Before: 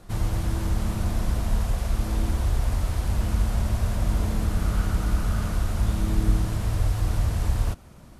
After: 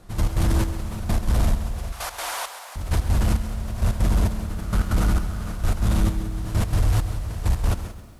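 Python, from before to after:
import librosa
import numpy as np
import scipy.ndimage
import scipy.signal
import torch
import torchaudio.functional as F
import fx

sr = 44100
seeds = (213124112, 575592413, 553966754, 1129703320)

p1 = fx.highpass(x, sr, hz=710.0, slope=24, at=(1.92, 2.76))
p2 = fx.over_compress(p1, sr, threshold_db=-28.0, ratio=-1.0)
p3 = p1 + (p2 * 10.0 ** (-0.5 / 20.0))
p4 = fx.step_gate(p3, sr, bpm=165, pattern='..x.xxx...', floor_db=-12.0, edge_ms=4.5)
p5 = 10.0 ** (-15.0 / 20.0) * np.tanh(p4 / 10.0 ** (-15.0 / 20.0))
p6 = p5 + fx.echo_feedback(p5, sr, ms=186, feedback_pct=40, wet_db=-20.5, dry=0)
p7 = fx.echo_crushed(p6, sr, ms=134, feedback_pct=35, bits=9, wet_db=-12.5)
y = p7 * 10.0 ** (3.0 / 20.0)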